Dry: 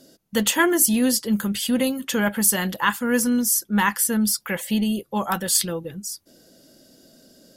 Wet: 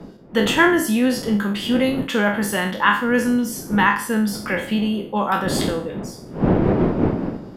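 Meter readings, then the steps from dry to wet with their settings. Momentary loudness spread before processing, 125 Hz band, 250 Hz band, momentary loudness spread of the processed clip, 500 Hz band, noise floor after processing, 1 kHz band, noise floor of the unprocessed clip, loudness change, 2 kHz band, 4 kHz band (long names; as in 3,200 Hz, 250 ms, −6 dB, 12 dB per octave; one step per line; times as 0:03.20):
10 LU, +8.0 dB, +3.5 dB, 8 LU, +6.0 dB, −38 dBFS, +5.5 dB, −61 dBFS, +1.5 dB, +5.0 dB, +0.5 dB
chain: peak hold with a decay on every bin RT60 0.48 s
wind on the microphone 230 Hz −24 dBFS
three-way crossover with the lows and the highs turned down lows −14 dB, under 160 Hz, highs −18 dB, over 3,600 Hz
level +3 dB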